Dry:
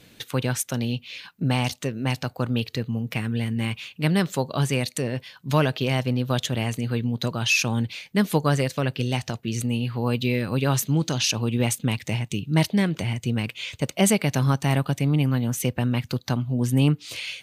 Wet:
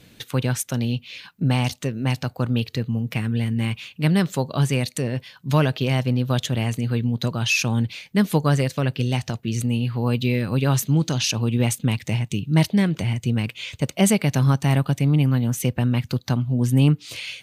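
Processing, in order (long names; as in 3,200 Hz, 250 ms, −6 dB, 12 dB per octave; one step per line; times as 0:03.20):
bass and treble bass +4 dB, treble 0 dB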